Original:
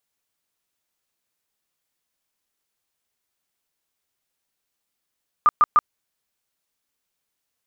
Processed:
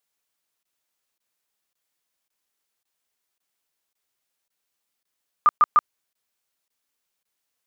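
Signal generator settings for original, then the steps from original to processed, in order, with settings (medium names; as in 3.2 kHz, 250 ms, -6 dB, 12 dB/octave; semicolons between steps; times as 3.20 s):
tone bursts 1.21 kHz, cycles 35, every 0.15 s, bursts 3, -10.5 dBFS
bass shelf 260 Hz -6.5 dB; crackling interface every 0.55 s, samples 1024, zero, from 0.63 s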